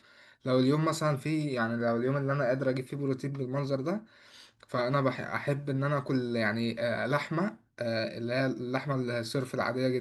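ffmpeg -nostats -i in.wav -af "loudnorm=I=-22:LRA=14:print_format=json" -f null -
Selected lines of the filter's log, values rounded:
"input_i" : "-31.0",
"input_tp" : "-13.7",
"input_lra" : "2.1",
"input_thresh" : "-41.2",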